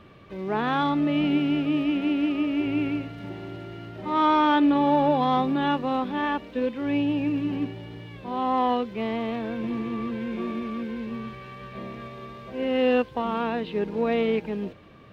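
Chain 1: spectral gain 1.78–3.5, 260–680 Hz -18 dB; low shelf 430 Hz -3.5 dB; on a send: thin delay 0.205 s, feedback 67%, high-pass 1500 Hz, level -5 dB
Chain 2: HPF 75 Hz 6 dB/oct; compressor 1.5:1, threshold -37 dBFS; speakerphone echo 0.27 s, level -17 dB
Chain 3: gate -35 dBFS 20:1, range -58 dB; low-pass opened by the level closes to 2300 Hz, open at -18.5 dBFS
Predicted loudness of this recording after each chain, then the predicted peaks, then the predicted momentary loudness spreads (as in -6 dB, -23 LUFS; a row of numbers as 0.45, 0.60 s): -27.0, -32.0, -25.5 LUFS; -10.5, -17.5, -10.5 dBFS; 17, 12, 13 LU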